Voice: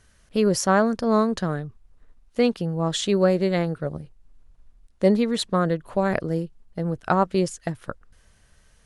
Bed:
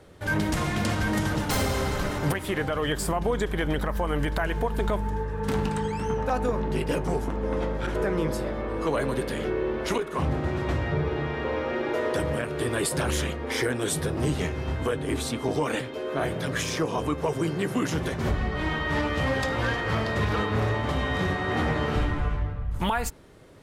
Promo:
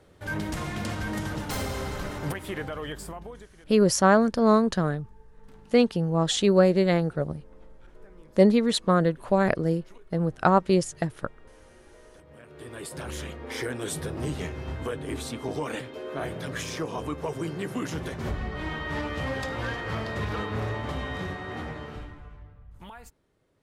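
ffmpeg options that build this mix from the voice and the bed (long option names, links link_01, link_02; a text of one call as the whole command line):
ffmpeg -i stem1.wav -i stem2.wav -filter_complex "[0:a]adelay=3350,volume=0.5dB[link_01];[1:a]volume=16.5dB,afade=type=out:start_time=2.57:duration=0.94:silence=0.0841395,afade=type=in:start_time=12.26:duration=1.49:silence=0.0794328,afade=type=out:start_time=20.9:duration=1.31:silence=0.199526[link_02];[link_01][link_02]amix=inputs=2:normalize=0" out.wav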